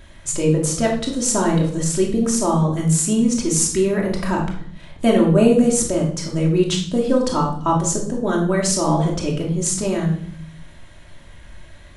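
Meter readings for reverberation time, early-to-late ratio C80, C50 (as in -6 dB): 0.60 s, 10.5 dB, 5.5 dB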